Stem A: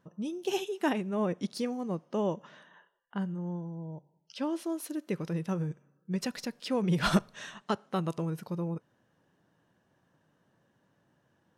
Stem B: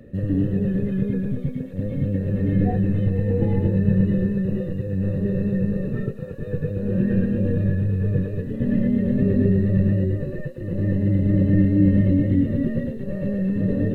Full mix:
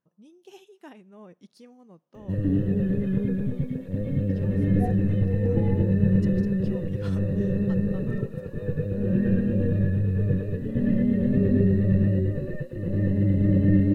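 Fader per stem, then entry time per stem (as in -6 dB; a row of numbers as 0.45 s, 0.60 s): -17.0 dB, -2.0 dB; 0.00 s, 2.15 s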